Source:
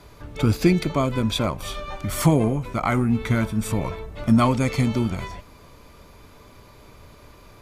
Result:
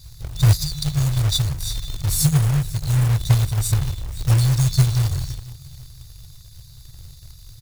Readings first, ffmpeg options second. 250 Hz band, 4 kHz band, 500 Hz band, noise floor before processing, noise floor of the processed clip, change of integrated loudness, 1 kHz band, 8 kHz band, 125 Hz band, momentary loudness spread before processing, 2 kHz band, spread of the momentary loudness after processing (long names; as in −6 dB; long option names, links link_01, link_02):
−8.0 dB, +5.5 dB, −13.0 dB, −49 dBFS, −44 dBFS, +2.5 dB, −9.5 dB, +9.0 dB, +7.0 dB, 13 LU, −5.5 dB, 11 LU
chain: -af "aecho=1:1:501|1002|1503:0.1|0.036|0.013,afftfilt=real='re*(1-between(b*sr/4096,160,3500))':imag='im*(1-between(b*sr/4096,160,3500))':win_size=4096:overlap=0.75,acrusher=bits=3:mode=log:mix=0:aa=0.000001,volume=8dB"